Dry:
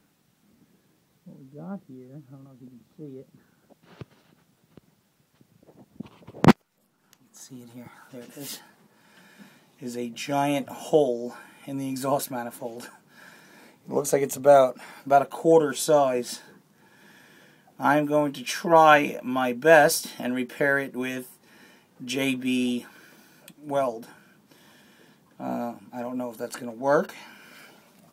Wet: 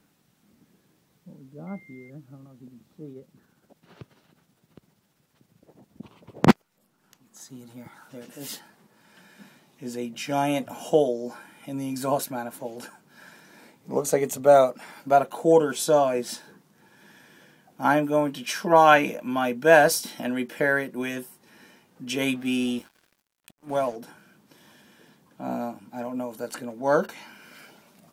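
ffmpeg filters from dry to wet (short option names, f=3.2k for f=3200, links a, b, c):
-filter_complex "[0:a]asettb=1/sr,asplit=3[a][b][c];[a]atrim=end=1.674[d];[b]atrim=start=1.67:end=2.1,asetpts=PTS-STARTPTS,afade=t=in:d=0.004:c=qsin,afade=t=out:st=0.426:d=0.004:c=qsin,aeval=exprs='val(0)+0.00316*sin(2*PI*2100*n/s)':c=same[e];[c]atrim=start=2.096[f];[d][e]acrossfade=d=0.004:c1=hsin:c2=qsin[g];[g][f]acrossfade=d=0.004:c1=qsin:c2=hsin,asettb=1/sr,asplit=3[h][i][j];[h]atrim=end=3.114[k];[i]atrim=start=3.11:end=6.49,asetpts=PTS-STARTPTS,afade=t=in:d=0.004:c=qsin,afade=t=out:st=3.376:d=0.004:c=qsin,tremolo=f=15:d=0.34[l];[j]atrim=start=6.486[m];[k][l]acrossfade=d=0.004:c1=hsin:c2=qsin[n];[n][m]acrossfade=d=0.004:c1=qsin:c2=hsin,asettb=1/sr,asplit=3[o][p][q];[o]atrim=end=22.354[r];[p]atrim=start=22.35:end=23.96,asetpts=PTS-STARTPTS,afade=t=in:d=0.004:c=qsin,afade=t=out:st=1.606:d=0.004:c=qsin,aeval=exprs='sgn(val(0))*max(abs(val(0))-0.00422,0)':c=same[s];[q]atrim=start=23.956[t];[r][s]acrossfade=d=0.004:c1=hsin:c2=qsin[u];[u][t]acrossfade=d=0.004:c1=qsin:c2=hsin"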